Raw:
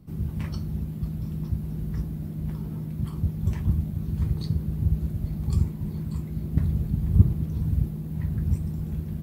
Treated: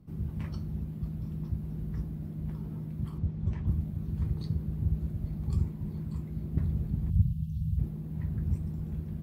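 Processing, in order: high shelf 3400 Hz -7 dB; soft clip -9 dBFS, distortion -18 dB; 3.18–3.67 air absorption 88 m; 7.1–7.79 brick-wall FIR band-stop 210–2600 Hz; gain -5 dB

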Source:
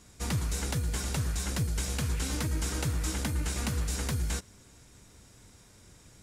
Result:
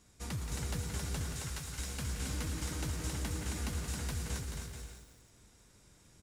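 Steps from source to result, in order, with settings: 1.32–1.79 HPF 920 Hz 24 dB/oct; on a send: bouncing-ball echo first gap 0.27 s, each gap 0.6×, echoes 5; on the sum: lo-fi delay 0.175 s, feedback 35%, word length 8-bit, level -9 dB; gain -8.5 dB

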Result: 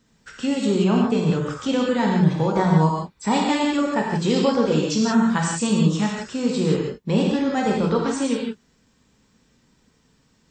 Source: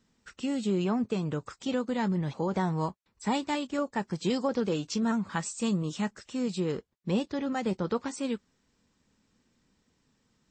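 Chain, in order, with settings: non-linear reverb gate 0.2 s flat, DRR -1.5 dB; gain +6 dB

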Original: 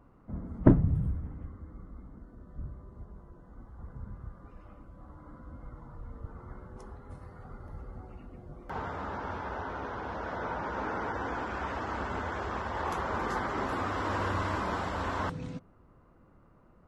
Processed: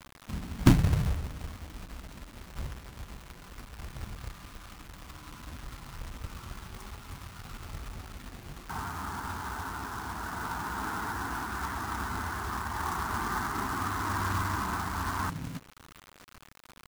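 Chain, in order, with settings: fixed phaser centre 1300 Hz, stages 4; companded quantiser 4-bit; mismatched tape noise reduction encoder only; gain +2 dB

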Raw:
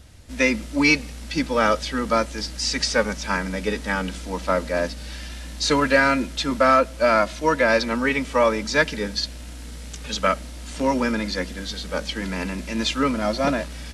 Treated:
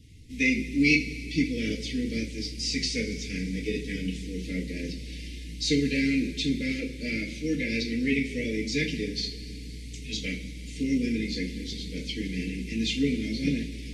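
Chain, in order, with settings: Chebyshev band-stop 430–2100 Hz, order 4; high shelf 3600 Hz -8 dB; two-slope reverb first 0.32 s, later 2.8 s, from -18 dB, DRR -3 dB; harmonic-percussive split percussive +5 dB; gain -7.5 dB

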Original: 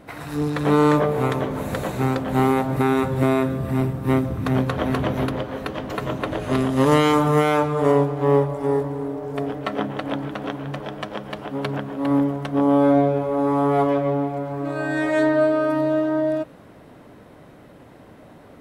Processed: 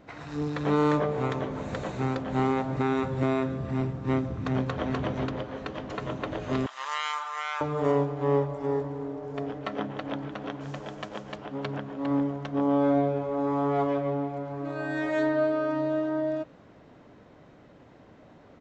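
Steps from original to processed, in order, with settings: 6.66–7.61 HPF 1000 Hz 24 dB/oct; 10.6–11.36 modulation noise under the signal 18 dB; downsampling 16000 Hz; gain -7 dB

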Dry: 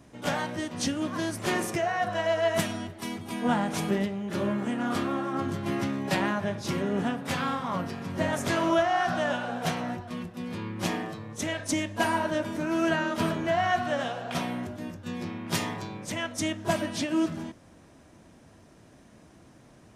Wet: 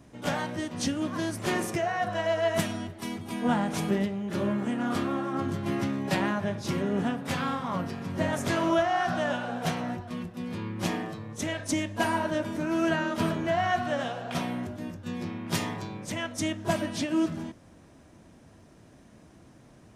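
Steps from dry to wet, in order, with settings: low shelf 340 Hz +3 dB; gain -1.5 dB

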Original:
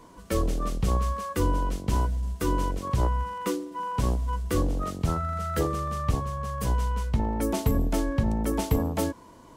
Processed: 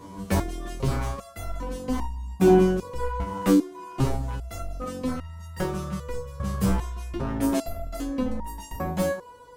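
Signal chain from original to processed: HPF 65 Hz 12 dB/oct; low shelf 250 Hz +10.5 dB; in parallel at +1.5 dB: compressor 6:1, threshold -25 dBFS, peak gain reduction 13.5 dB; on the sum: wavefolder -12 dBFS; 1.99–2.63 small resonant body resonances 260/750/2400 Hz, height 12 dB, ringing for 25 ms; on a send: band-limited delay 0.149 s, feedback 80%, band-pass 870 Hz, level -17 dB; on the sum: stepped resonator 2.5 Hz 97–930 Hz; gain +8 dB

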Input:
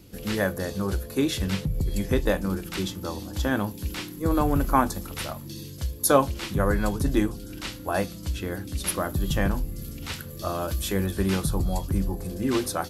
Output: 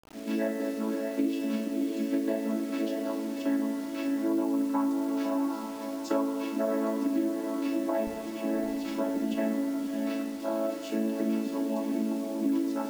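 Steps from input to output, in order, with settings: chord vocoder major triad, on A3; HPF 250 Hz 12 dB/oct, from 8.07 s 43 Hz, from 9.34 s 210 Hz; reverb RT60 1.2 s, pre-delay 3 ms, DRR 3.5 dB; dynamic EQ 1300 Hz, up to -5 dB, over -49 dBFS, Q 7.9; diffused feedback echo 0.63 s, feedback 41%, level -7.5 dB; compressor 6:1, threshold -25 dBFS, peak gain reduction 10.5 dB; requantised 8-bit, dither none

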